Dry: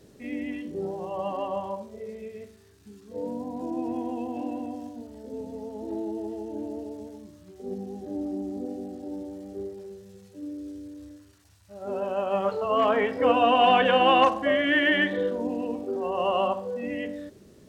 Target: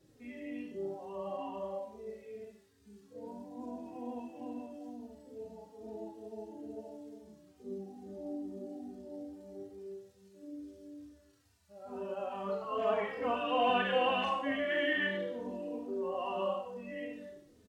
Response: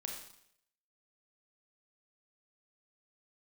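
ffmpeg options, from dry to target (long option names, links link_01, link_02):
-filter_complex "[0:a]asettb=1/sr,asplit=3[link_01][link_02][link_03];[link_01]atrim=end=1.484[link_04];[link_02]atrim=start=1.48:end=2.41,asetpts=PTS-STARTPTS,afade=type=in:duration=0.004:curve=qsin,afade=type=out:start_time=0.926:duration=0.004:curve=qsin,asplit=2[link_05][link_06];[link_06]adelay=43,volume=-6.5dB[link_07];[link_05][link_07]amix=inputs=2:normalize=0,atrim=end_sample=41013[link_08];[link_03]atrim=start=2.406[link_09];[link_04][link_08]acrossfade=duration=0.004:curve1=hsin:curve2=qsin[link_10];[link_10][link_09]acrossfade=duration=0.004:curve1=qsin:curve2=hsin[link_11];[1:a]atrim=start_sample=2205,asetrate=48510,aresample=44100[link_12];[link_11][link_12]afir=irnorm=-1:irlink=0,asplit=2[link_13][link_14];[link_14]adelay=3.1,afreqshift=-2.3[link_15];[link_13][link_15]amix=inputs=2:normalize=1,volume=-5dB"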